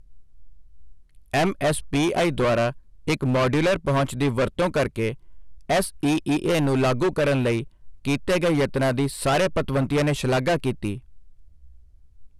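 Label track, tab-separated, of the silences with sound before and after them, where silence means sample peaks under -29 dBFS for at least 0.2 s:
2.710000	3.070000	silence
5.140000	5.700000	silence
7.630000	8.050000	silence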